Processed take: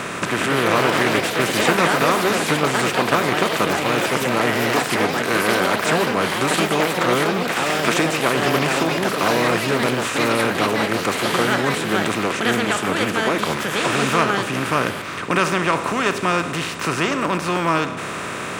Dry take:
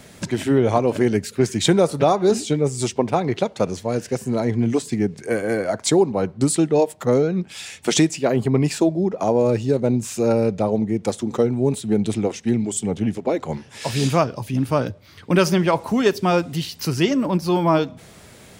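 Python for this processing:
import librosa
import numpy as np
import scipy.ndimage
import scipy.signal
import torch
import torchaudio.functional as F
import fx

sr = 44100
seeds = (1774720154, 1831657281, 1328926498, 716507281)

y = fx.bin_compress(x, sr, power=0.4)
y = fx.band_shelf(y, sr, hz=1700.0, db=10.5, octaves=1.7)
y = fx.echo_pitch(y, sr, ms=259, semitones=4, count=3, db_per_echo=-3.0)
y = F.gain(torch.from_numpy(y), -10.0).numpy()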